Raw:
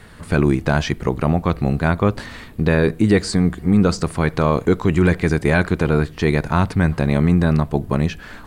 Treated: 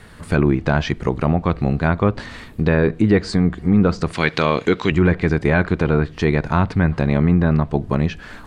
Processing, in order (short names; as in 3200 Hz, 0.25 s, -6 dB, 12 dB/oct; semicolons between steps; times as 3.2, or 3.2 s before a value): 4.13–4.92 weighting filter D; treble ducked by the level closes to 2600 Hz, closed at -11 dBFS